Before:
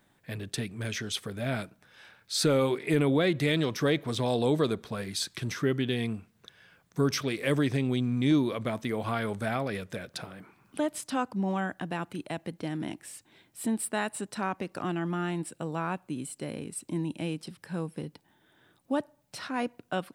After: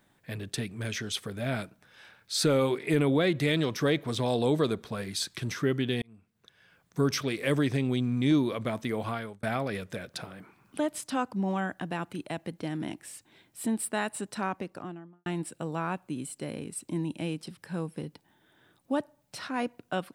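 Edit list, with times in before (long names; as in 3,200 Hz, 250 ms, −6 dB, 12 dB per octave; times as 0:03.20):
0:06.02–0:06.99: fade in
0:09.02–0:09.43: fade out linear
0:14.42–0:15.26: fade out and dull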